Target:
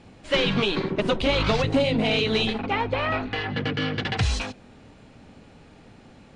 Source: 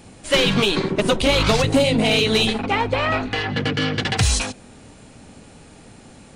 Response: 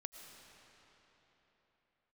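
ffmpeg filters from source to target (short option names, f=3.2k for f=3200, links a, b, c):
-af "lowpass=4.1k,volume=-4.5dB"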